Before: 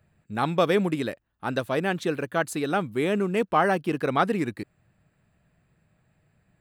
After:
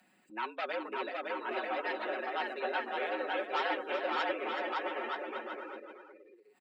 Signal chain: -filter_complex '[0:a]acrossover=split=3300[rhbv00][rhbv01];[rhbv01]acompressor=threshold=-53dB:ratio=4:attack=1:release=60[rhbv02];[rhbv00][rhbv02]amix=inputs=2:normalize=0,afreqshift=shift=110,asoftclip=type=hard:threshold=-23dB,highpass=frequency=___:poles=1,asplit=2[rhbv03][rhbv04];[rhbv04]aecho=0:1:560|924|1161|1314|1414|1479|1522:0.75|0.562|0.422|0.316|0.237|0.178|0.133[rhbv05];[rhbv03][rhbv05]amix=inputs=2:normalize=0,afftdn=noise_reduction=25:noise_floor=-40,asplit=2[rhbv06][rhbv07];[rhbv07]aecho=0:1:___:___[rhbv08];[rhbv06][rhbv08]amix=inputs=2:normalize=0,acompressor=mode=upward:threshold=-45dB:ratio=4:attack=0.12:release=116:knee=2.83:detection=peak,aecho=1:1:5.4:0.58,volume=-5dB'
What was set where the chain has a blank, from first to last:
1100, 377, 0.355